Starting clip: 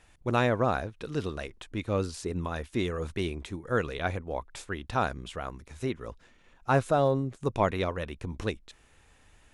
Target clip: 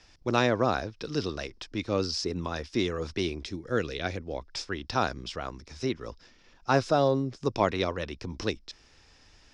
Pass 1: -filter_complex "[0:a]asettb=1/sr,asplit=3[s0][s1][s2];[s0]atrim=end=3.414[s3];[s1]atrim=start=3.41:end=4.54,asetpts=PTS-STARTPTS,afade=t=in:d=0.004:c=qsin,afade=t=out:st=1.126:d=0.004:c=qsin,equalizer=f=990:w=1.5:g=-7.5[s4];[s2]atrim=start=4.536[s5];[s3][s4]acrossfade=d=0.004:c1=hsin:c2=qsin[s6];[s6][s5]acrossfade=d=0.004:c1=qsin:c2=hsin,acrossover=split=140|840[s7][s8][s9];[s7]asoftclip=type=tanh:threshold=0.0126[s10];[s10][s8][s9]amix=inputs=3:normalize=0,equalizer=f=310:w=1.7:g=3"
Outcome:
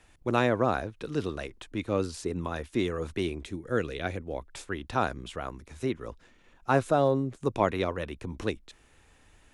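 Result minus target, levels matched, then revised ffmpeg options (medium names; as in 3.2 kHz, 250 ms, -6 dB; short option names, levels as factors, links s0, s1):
4 kHz band -6.5 dB
-filter_complex "[0:a]asettb=1/sr,asplit=3[s0][s1][s2];[s0]atrim=end=3.414[s3];[s1]atrim=start=3.41:end=4.54,asetpts=PTS-STARTPTS,afade=t=in:d=0.004:c=qsin,afade=t=out:st=1.126:d=0.004:c=qsin,equalizer=f=990:w=1.5:g=-7.5[s4];[s2]atrim=start=4.536[s5];[s3][s4]acrossfade=d=0.004:c1=hsin:c2=qsin[s6];[s6][s5]acrossfade=d=0.004:c1=qsin:c2=hsin,acrossover=split=140|840[s7][s8][s9];[s7]asoftclip=type=tanh:threshold=0.0126[s10];[s10][s8][s9]amix=inputs=3:normalize=0,lowpass=f=5200:t=q:w=7.9,equalizer=f=310:w=1.7:g=3"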